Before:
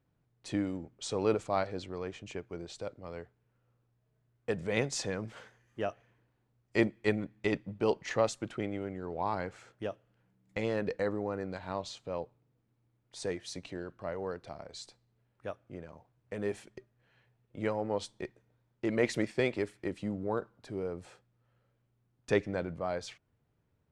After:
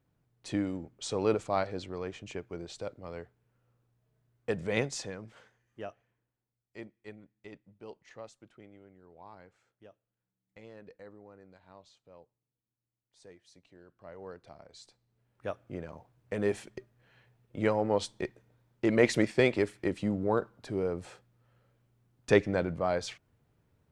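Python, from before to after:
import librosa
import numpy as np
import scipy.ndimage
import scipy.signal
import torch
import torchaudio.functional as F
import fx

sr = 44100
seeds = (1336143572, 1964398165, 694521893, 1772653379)

y = fx.gain(x, sr, db=fx.line((4.78, 1.0), (5.19, -7.0), (5.85, -7.0), (6.76, -18.0), (13.66, -18.0), (14.29, -7.0), (14.8, -7.0), (15.59, 5.0)))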